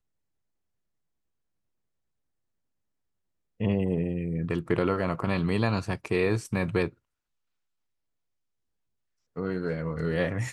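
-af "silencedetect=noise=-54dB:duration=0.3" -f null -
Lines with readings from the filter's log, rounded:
silence_start: 0.00
silence_end: 3.60 | silence_duration: 3.60
silence_start: 6.94
silence_end: 9.36 | silence_duration: 2.42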